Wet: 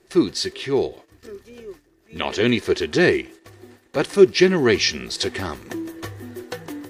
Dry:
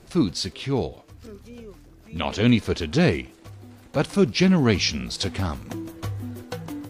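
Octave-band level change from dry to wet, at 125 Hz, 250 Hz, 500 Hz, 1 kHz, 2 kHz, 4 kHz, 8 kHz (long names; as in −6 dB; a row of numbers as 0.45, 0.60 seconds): −6.0, +1.0, +7.0, +1.5, +6.0, +3.0, +3.0 decibels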